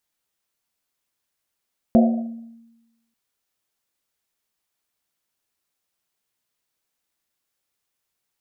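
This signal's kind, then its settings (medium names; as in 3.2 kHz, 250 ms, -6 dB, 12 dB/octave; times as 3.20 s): Risset drum length 1.19 s, pitch 230 Hz, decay 1.09 s, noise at 670 Hz, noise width 120 Hz, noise 30%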